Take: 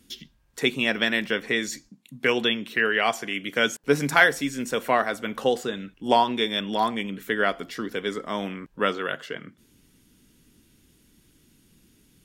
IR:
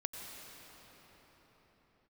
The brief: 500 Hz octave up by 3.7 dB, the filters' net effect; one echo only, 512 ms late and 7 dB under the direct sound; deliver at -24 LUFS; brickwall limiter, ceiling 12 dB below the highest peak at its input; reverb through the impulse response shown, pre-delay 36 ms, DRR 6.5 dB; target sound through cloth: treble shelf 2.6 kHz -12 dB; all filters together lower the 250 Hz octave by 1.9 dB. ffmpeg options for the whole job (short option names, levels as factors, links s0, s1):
-filter_complex "[0:a]equalizer=f=250:t=o:g=-4,equalizer=f=500:t=o:g=6,alimiter=limit=0.188:level=0:latency=1,aecho=1:1:512:0.447,asplit=2[s0][s1];[1:a]atrim=start_sample=2205,adelay=36[s2];[s1][s2]afir=irnorm=-1:irlink=0,volume=0.447[s3];[s0][s3]amix=inputs=2:normalize=0,highshelf=f=2600:g=-12,volume=1.58"